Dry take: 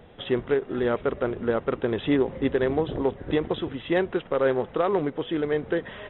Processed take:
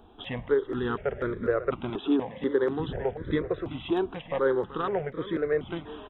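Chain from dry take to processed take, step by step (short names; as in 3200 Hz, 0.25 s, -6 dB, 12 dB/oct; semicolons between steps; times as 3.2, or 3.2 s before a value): 1.9–2.8 HPF 180 Hz 12 dB/oct; echo 0.38 s -12.5 dB; step phaser 4.1 Hz 540–2800 Hz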